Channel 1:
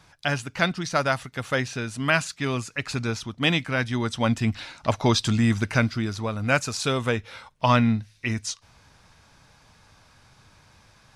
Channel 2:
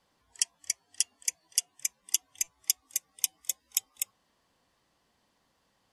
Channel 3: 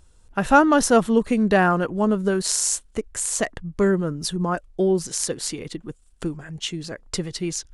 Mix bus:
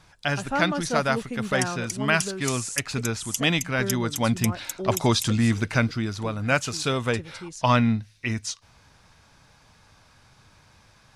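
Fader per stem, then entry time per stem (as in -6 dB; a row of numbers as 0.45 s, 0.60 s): -0.5 dB, -2.5 dB, -12.0 dB; 0.00 s, 1.20 s, 0.00 s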